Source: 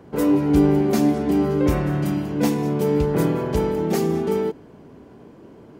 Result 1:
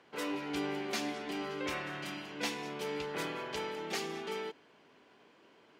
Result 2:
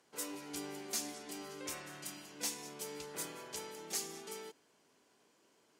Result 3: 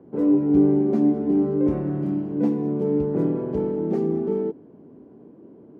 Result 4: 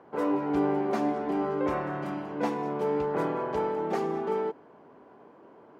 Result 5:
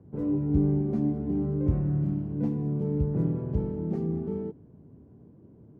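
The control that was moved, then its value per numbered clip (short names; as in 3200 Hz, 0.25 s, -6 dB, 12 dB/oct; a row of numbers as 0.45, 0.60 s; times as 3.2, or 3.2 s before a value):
band-pass, frequency: 3000, 7700, 290, 970, 100 Hz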